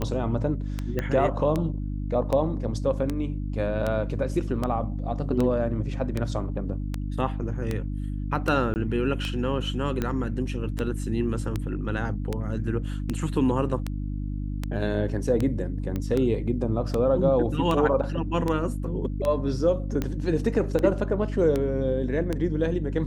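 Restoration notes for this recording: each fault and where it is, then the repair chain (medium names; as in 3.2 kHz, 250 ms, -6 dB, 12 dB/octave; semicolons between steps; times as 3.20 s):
hum 50 Hz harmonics 6 -30 dBFS
tick 78 rpm -14 dBFS
0.99 s: pop -15 dBFS
8.74–8.76 s: dropout 19 ms
15.96 s: pop -18 dBFS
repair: de-click; de-hum 50 Hz, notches 6; interpolate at 8.74 s, 19 ms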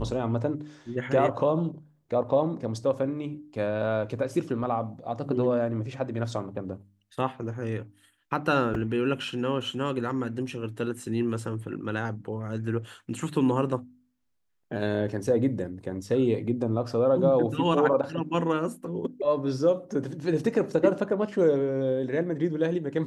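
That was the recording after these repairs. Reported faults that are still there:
nothing left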